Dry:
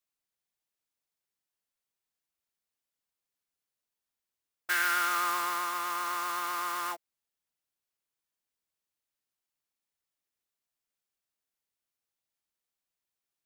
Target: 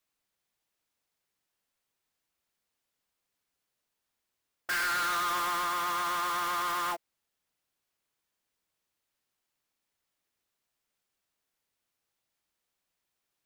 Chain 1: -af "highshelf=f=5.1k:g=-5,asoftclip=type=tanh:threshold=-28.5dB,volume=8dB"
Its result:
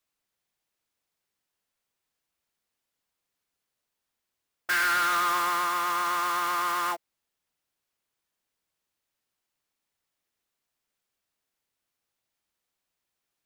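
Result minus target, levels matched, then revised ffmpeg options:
soft clip: distortion -6 dB
-af "highshelf=f=5.1k:g=-5,asoftclip=type=tanh:threshold=-36dB,volume=8dB"

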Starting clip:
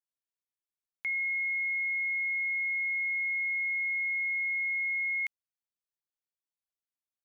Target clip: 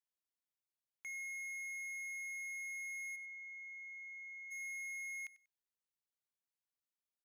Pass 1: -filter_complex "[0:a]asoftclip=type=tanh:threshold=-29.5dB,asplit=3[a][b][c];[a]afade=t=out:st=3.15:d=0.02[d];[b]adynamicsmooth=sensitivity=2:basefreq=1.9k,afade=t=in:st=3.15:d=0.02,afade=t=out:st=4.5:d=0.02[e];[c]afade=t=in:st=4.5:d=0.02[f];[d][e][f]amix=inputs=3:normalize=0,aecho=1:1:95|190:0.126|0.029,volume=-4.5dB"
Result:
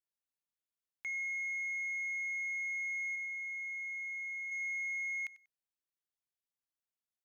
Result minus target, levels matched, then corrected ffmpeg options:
soft clip: distortion -10 dB
-filter_complex "[0:a]asoftclip=type=tanh:threshold=-39.5dB,asplit=3[a][b][c];[a]afade=t=out:st=3.15:d=0.02[d];[b]adynamicsmooth=sensitivity=2:basefreq=1.9k,afade=t=in:st=3.15:d=0.02,afade=t=out:st=4.5:d=0.02[e];[c]afade=t=in:st=4.5:d=0.02[f];[d][e][f]amix=inputs=3:normalize=0,aecho=1:1:95|190:0.126|0.029,volume=-4.5dB"

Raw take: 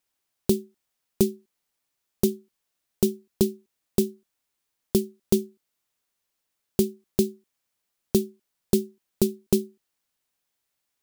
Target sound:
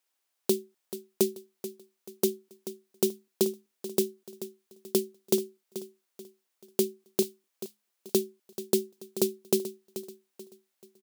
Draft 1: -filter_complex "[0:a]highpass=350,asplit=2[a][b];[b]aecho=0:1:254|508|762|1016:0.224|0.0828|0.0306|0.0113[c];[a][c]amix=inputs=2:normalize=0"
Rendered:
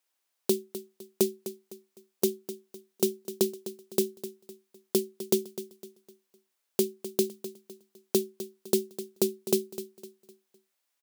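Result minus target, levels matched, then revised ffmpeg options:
echo 0.18 s early
-filter_complex "[0:a]highpass=350,asplit=2[a][b];[b]aecho=0:1:434|868|1302|1736:0.224|0.0828|0.0306|0.0113[c];[a][c]amix=inputs=2:normalize=0"

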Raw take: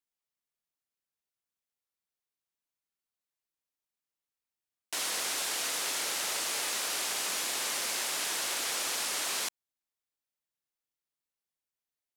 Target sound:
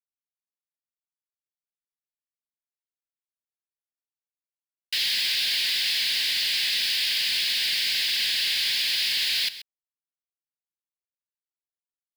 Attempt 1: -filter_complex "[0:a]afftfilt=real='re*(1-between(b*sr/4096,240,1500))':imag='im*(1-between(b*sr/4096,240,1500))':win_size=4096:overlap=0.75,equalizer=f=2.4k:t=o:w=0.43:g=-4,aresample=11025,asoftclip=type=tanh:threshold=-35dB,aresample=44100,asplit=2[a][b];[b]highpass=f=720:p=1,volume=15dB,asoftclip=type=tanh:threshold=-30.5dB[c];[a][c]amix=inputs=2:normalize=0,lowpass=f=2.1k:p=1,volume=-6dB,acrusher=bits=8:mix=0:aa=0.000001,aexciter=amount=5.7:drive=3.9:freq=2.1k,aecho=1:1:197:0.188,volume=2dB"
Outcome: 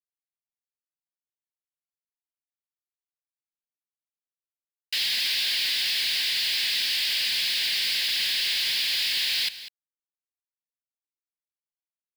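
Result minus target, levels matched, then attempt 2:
echo 66 ms late; soft clip: distortion +15 dB
-filter_complex "[0:a]afftfilt=real='re*(1-between(b*sr/4096,240,1500))':imag='im*(1-between(b*sr/4096,240,1500))':win_size=4096:overlap=0.75,equalizer=f=2.4k:t=o:w=0.43:g=-4,aresample=11025,asoftclip=type=tanh:threshold=-25dB,aresample=44100,asplit=2[a][b];[b]highpass=f=720:p=1,volume=15dB,asoftclip=type=tanh:threshold=-30.5dB[c];[a][c]amix=inputs=2:normalize=0,lowpass=f=2.1k:p=1,volume=-6dB,acrusher=bits=8:mix=0:aa=0.000001,aexciter=amount=5.7:drive=3.9:freq=2.1k,aecho=1:1:131:0.188,volume=2dB"

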